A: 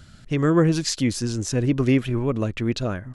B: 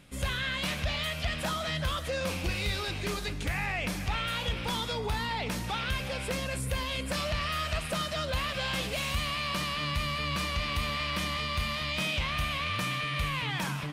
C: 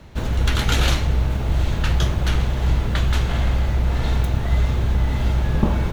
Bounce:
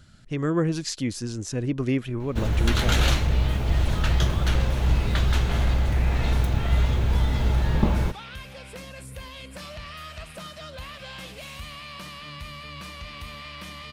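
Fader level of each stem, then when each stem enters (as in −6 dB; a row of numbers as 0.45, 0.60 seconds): −5.5, −7.5, −2.5 decibels; 0.00, 2.45, 2.20 seconds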